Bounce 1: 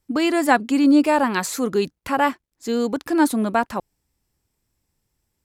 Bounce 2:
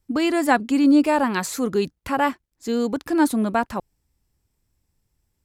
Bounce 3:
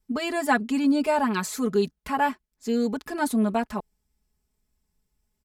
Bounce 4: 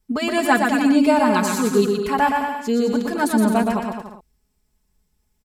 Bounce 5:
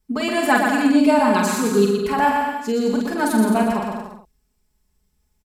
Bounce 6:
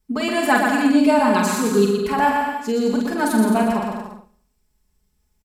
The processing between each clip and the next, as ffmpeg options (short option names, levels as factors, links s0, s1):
-af "lowshelf=f=130:g=8,volume=0.794"
-af "aecho=1:1:4.7:0.92,volume=0.501"
-af "aecho=1:1:120|216|292.8|354.2|403.4:0.631|0.398|0.251|0.158|0.1,volume=1.68"
-filter_complex "[0:a]asplit=2[s0][s1];[s1]adelay=45,volume=0.596[s2];[s0][s2]amix=inputs=2:normalize=0,volume=0.891"
-af "aecho=1:1:71|142|213|284:0.112|0.0583|0.0303|0.0158"